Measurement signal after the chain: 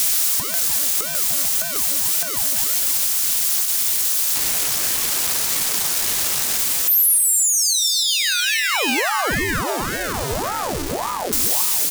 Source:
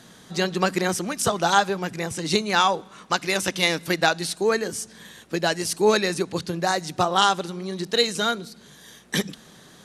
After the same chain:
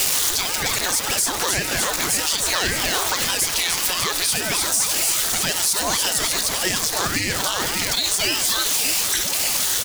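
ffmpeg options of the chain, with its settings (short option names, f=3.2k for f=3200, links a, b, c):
-filter_complex "[0:a]aeval=exprs='val(0)+0.5*0.0531*sgn(val(0))':c=same,bass=f=250:g=-13,treble=f=4k:g=11,bandreject=f=140.1:t=h:w=4,bandreject=f=280.2:t=h:w=4,bandreject=f=420.3:t=h:w=4,bandreject=f=560.4:t=h:w=4,bandreject=f=700.5:t=h:w=4,bandreject=f=840.6:t=h:w=4,bandreject=f=980.7:t=h:w=4,bandreject=f=1.1208k:t=h:w=4,bandreject=f=1.2609k:t=h:w=4,bandreject=f=1.401k:t=h:w=4,bandreject=f=1.5411k:t=h:w=4,bandreject=f=1.6812k:t=h:w=4,bandreject=f=1.8213k:t=h:w=4,bandreject=f=1.9614k:t=h:w=4,bandreject=f=2.1015k:t=h:w=4,bandreject=f=2.2416k:t=h:w=4,bandreject=f=2.3817k:t=h:w=4,bandreject=f=2.5218k:t=h:w=4,bandreject=f=2.6619k:t=h:w=4,bandreject=f=2.802k:t=h:w=4,bandreject=f=2.9421k:t=h:w=4,bandreject=f=3.0822k:t=h:w=4,bandreject=f=3.2223k:t=h:w=4,bandreject=f=3.3624k:t=h:w=4,bandreject=f=3.5025k:t=h:w=4,bandreject=f=3.6426k:t=h:w=4,bandreject=f=3.7827k:t=h:w=4,bandreject=f=3.9228k:t=h:w=4,bandreject=f=4.0629k:t=h:w=4,bandreject=f=4.203k:t=h:w=4,bandreject=f=4.3431k:t=h:w=4,bandreject=f=4.4832k:t=h:w=4,bandreject=f=4.6233k:t=h:w=4,bandreject=f=4.7634k:t=h:w=4,bandreject=f=4.9035k:t=h:w=4,bandreject=f=5.0436k:t=h:w=4,bandreject=f=5.1837k:t=h:w=4,bandreject=f=5.3238k:t=h:w=4,asplit=2[a][b];[b]aecho=0:1:299|598|897|1196|1495|1794:0.501|0.246|0.12|0.059|0.0289|0.0142[c];[a][c]amix=inputs=2:normalize=0,acompressor=threshold=-21dB:ratio=6,equalizer=f=400:w=2.1:g=-14.5,asplit=2[d][e];[e]aecho=0:1:192:0.0944[f];[d][f]amix=inputs=2:normalize=0,alimiter=level_in=16.5dB:limit=-1dB:release=50:level=0:latency=1,aeval=exprs='val(0)*sin(2*PI*620*n/s+620*0.8/1.8*sin(2*PI*1.8*n/s))':c=same,volume=-6.5dB"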